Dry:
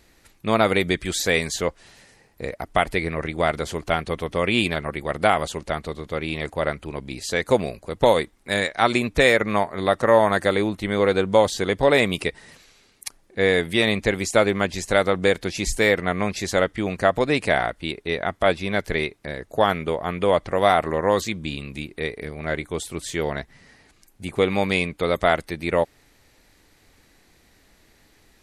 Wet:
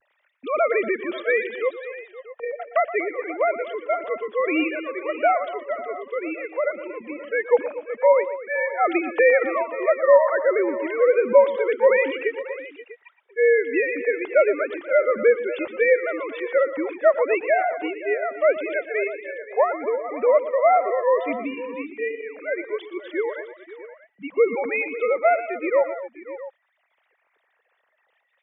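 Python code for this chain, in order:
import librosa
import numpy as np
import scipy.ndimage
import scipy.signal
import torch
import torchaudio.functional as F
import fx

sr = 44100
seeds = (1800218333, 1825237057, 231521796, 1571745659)

y = fx.sine_speech(x, sr)
y = fx.echo_multitap(y, sr, ms=(117, 237, 531, 649), db=(-14.0, -15.5, -16.5, -17.0))
y = fx.vibrato(y, sr, rate_hz=0.64, depth_cents=37.0)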